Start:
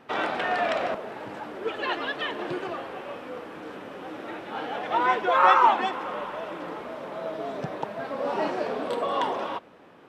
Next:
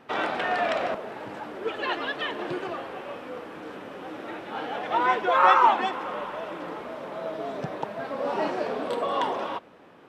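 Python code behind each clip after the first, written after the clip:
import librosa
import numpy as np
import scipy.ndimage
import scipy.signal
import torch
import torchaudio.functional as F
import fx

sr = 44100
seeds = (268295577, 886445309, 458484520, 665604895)

y = x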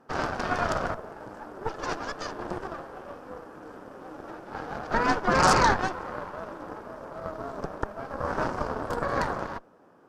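y = fx.cheby_harmonics(x, sr, harmonics=(8,), levels_db=(-7,), full_scale_db=-5.0)
y = fx.band_shelf(y, sr, hz=2800.0, db=-11.5, octaves=1.3)
y = y * librosa.db_to_amplitude(-5.0)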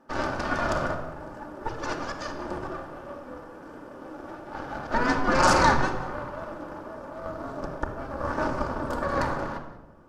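y = x + 10.0 ** (-18.5 / 20.0) * np.pad(x, (int(185 * sr / 1000.0), 0))[:len(x)]
y = fx.room_shoebox(y, sr, seeds[0], volume_m3=3500.0, walls='furnished', distance_m=2.5)
y = y * librosa.db_to_amplitude(-1.5)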